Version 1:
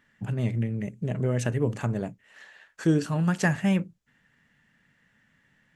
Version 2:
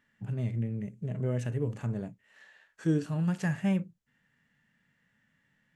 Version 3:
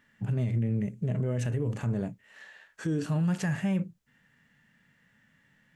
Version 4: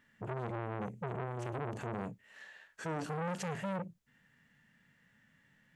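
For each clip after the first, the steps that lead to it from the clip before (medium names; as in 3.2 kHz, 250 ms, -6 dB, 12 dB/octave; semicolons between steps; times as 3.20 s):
harmonic-percussive split percussive -9 dB; trim -4 dB
peak limiter -28 dBFS, peak gain reduction 11.5 dB; trim +6.5 dB
transformer saturation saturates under 830 Hz; trim -3 dB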